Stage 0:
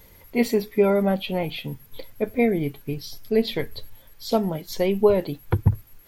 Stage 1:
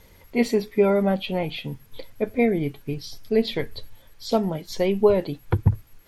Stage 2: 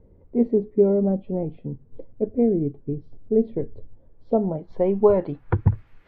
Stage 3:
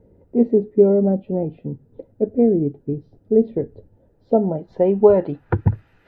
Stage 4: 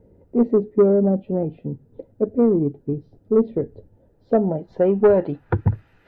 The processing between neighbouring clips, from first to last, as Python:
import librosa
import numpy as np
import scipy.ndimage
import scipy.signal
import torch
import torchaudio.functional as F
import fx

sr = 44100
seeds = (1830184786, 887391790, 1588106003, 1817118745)

y1 = scipy.signal.sosfilt(scipy.signal.butter(2, 9400.0, 'lowpass', fs=sr, output='sos'), x)
y2 = fx.filter_sweep_lowpass(y1, sr, from_hz=410.0, to_hz=2200.0, start_s=3.99, end_s=5.9, q=1.2)
y3 = fx.notch_comb(y2, sr, f0_hz=1100.0)
y3 = y3 * librosa.db_to_amplitude(4.5)
y4 = 10.0 ** (-6.5 / 20.0) * np.tanh(y3 / 10.0 ** (-6.5 / 20.0))